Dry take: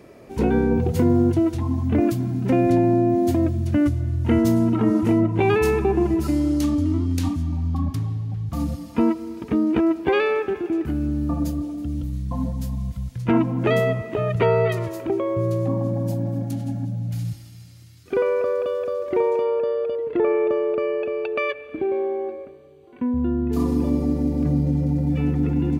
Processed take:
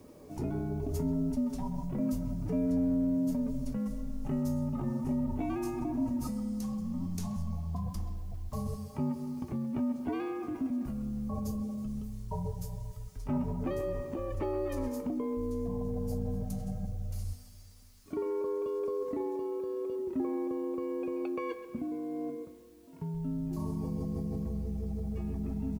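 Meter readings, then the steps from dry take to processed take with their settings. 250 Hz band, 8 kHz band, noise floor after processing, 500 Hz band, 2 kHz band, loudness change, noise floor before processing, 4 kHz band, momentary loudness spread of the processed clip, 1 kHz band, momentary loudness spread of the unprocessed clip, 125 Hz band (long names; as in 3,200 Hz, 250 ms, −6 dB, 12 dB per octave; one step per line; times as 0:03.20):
−11.5 dB, −8.5 dB, −52 dBFS, −14.5 dB, −21.5 dB, −12.5 dB, −44 dBFS, below −15 dB, 7 LU, −14.5 dB, 9 LU, −13.5 dB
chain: high-pass filter 130 Hz
flat-topped bell 2,500 Hz −9.5 dB
in parallel at −1 dB: compressor whose output falls as the input rises −27 dBFS, ratio −0.5
on the sum: background noise white −56 dBFS
tuned comb filter 170 Hz, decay 0.18 s, harmonics all, mix 70%
frequency shifter −83 Hz
far-end echo of a speakerphone 130 ms, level −12 dB
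level −7.5 dB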